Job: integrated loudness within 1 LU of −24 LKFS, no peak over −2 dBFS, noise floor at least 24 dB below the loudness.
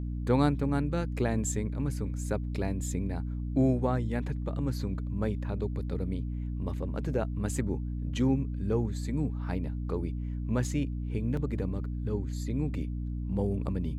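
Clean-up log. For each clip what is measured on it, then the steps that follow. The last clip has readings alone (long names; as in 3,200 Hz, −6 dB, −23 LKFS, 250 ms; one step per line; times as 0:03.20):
number of dropouts 1; longest dropout 2.5 ms; mains hum 60 Hz; hum harmonics up to 300 Hz; level of the hum −31 dBFS; integrated loudness −31.5 LKFS; sample peak −12.0 dBFS; target loudness −24.0 LKFS
→ repair the gap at 0:11.37, 2.5 ms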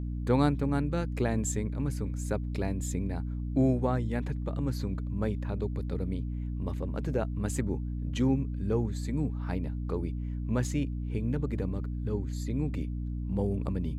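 number of dropouts 0; mains hum 60 Hz; hum harmonics up to 300 Hz; level of the hum −31 dBFS
→ mains-hum notches 60/120/180/240/300 Hz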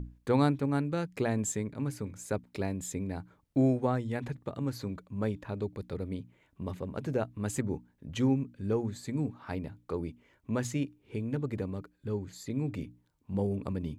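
mains hum none found; integrated loudness −33.5 LKFS; sample peak −13.5 dBFS; target loudness −24.0 LKFS
→ level +9.5 dB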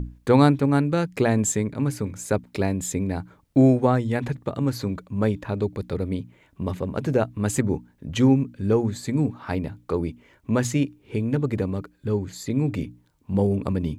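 integrated loudness −24.0 LKFS; sample peak −4.0 dBFS; background noise floor −61 dBFS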